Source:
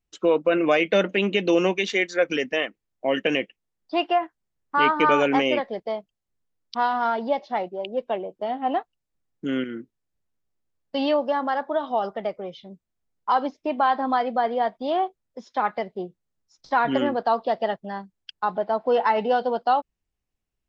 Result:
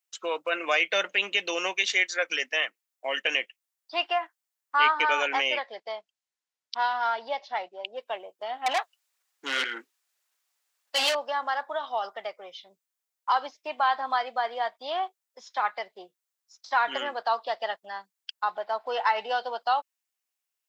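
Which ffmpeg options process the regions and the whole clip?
ffmpeg -i in.wav -filter_complex "[0:a]asettb=1/sr,asplit=3[link_01][link_02][link_03];[link_01]atrim=end=4.984[link_04];[link_02]atrim=start=4.98:end=7.96,asetpts=PTS-STARTPTS,afade=type=in:duration=0.004:curve=qsin,afade=type=out:start_time=2.976:duration=0.004:curve=qsin,lowpass=6400,bandreject=frequency=1200:width=14[link_05];[link_03]atrim=start=7.956[link_06];[link_04][link_05]acrossfade=duration=0.004:curve1=hsin:curve2=qsin[link_07];[link_07][link_06]acrossfade=duration=0.004:curve1=qsin:curve2=hsin,asettb=1/sr,asplit=3[link_08][link_09][link_10];[link_08]atrim=end=8.664[link_11];[link_09]atrim=start=8.66:end=11.15,asetpts=PTS-STARTPTS,afade=type=in:duration=0.004:curve=qsin,afade=type=out:start_time=2.486:duration=0.004:curve=qsin,flanger=delay=0:depth=7.2:regen=53:speed=1.8:shape=sinusoidal,asplit=2[link_12][link_13];[link_13]highpass=frequency=720:poles=1,volume=23dB,asoftclip=type=tanh:threshold=-13dB[link_14];[link_12][link_14]amix=inputs=2:normalize=0,lowpass=frequency=6200:poles=1,volume=-6dB[link_15];[link_10]atrim=start=11.146[link_16];[link_11][link_15]acrossfade=duration=0.004:curve1=hsin:curve2=qsin[link_17];[link_17][link_16]acrossfade=duration=0.004:curve1=qsin:curve2=hsin,highpass=940,highshelf=frequency=6200:gain=10.5" out.wav

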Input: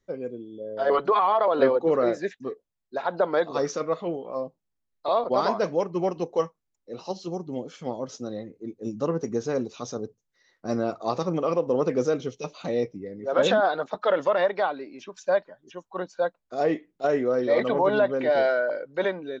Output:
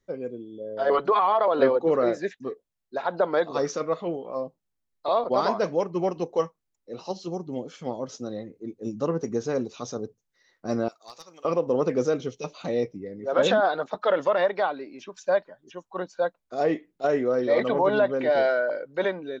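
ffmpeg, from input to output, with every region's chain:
ffmpeg -i in.wav -filter_complex "[0:a]asettb=1/sr,asplit=3[link_01][link_02][link_03];[link_01]atrim=end=10.884[link_04];[link_02]atrim=start=10.88:end=11.45,asetpts=PTS-STARTPTS,afade=type=in:duration=0.004:curve=qsin,afade=type=out:start_time=0.566:duration=0.004:curve=qsin,aderivative,aeval=exprs='clip(val(0),-1,0.0112)':channel_layout=same[link_05];[link_03]atrim=start=11.446[link_06];[link_04][link_05]acrossfade=duration=0.004:curve1=hsin:curve2=qsin[link_07];[link_07][link_06]acrossfade=duration=0.004:curve1=qsin:curve2=hsin" out.wav

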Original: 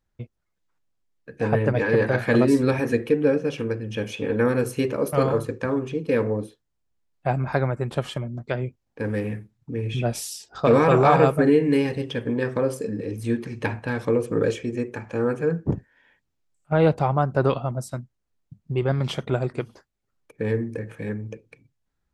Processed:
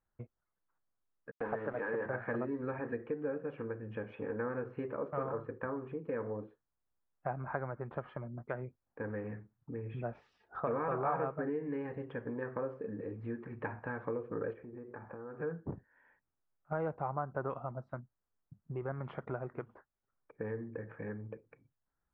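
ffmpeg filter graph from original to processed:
ffmpeg -i in.wav -filter_complex "[0:a]asettb=1/sr,asplit=3[link_01][link_02][link_03];[link_01]atrim=end=1.314[link_04];[link_02]atrim=start=1.31:end=2.06,asetpts=PTS-STARTPTS,afade=type=in:duration=0.004:curve=qsin,afade=type=out:start_time=0.746:duration=0.004:curve=qsin,highpass=200,aeval=exprs='val(0)*gte(abs(val(0)),0.0316)':channel_layout=same[link_05];[link_03]atrim=start=2.056[link_06];[link_04][link_05]acrossfade=duration=0.004:curve1=hsin:curve2=qsin[link_07];[link_07][link_06]acrossfade=duration=0.004:curve1=qsin:curve2=hsin,asettb=1/sr,asplit=3[link_08][link_09][link_10];[link_08]atrim=end=14.534[link_11];[link_09]atrim=start=14.53:end=15.4,asetpts=PTS-STARTPTS,afade=type=in:duration=0.004:curve=qsin,afade=type=out:start_time=0.866:duration=0.004:curve=qsin,lowpass=1700,acompressor=threshold=-34dB:ratio=12:attack=3.2:release=140:knee=1:detection=peak[link_12];[link_10]atrim=start=15.396[link_13];[link_11][link_12]acrossfade=duration=0.004:curve1=hsin:curve2=qsin[link_14];[link_14][link_13]acrossfade=duration=0.004:curve1=qsin:curve2=hsin,acompressor=threshold=-30dB:ratio=2.5,lowpass=frequency=1500:width=0.5412,lowpass=frequency=1500:width=1.3066,tiltshelf=frequency=690:gain=-6,volume=-5dB" out.wav

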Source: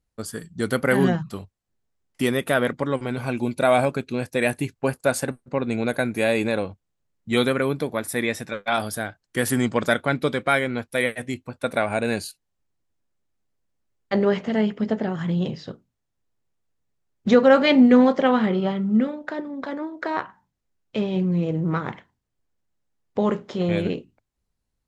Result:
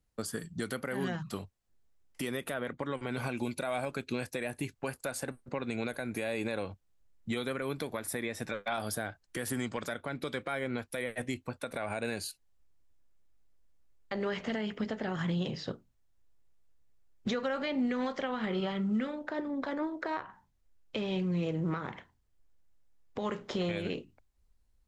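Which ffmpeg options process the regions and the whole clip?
ffmpeg -i in.wav -filter_complex "[0:a]asettb=1/sr,asplit=3[link_01][link_02][link_03];[link_01]atrim=end=2.534[link_04];[link_02]atrim=start=2.53:end=3.12,asetpts=PTS-STARTPTS,afade=type=in:duration=0.004:curve=qsin,afade=type=out:start_time=0.586:duration=0.004:curve=qsin,bandreject=frequency=5100:width=6.5,agate=range=-33dB:threshold=-39dB:ratio=3:release=100:detection=peak,highshelf=frequency=5700:gain=-7.5[link_05];[link_03]atrim=start=3.116[link_06];[link_04][link_05]acrossfade=duration=0.004:curve1=hsin:curve2=qsin[link_07];[link_07][link_06]acrossfade=duration=0.004:curve1=qsin:curve2=hsin,asubboost=boost=3.5:cutoff=71,acrossover=split=97|1200[link_08][link_09][link_10];[link_08]acompressor=threshold=-57dB:ratio=4[link_11];[link_09]acompressor=threshold=-30dB:ratio=4[link_12];[link_10]acompressor=threshold=-35dB:ratio=4[link_13];[link_11][link_12][link_13]amix=inputs=3:normalize=0,alimiter=limit=-23.5dB:level=0:latency=1:release=142" out.wav

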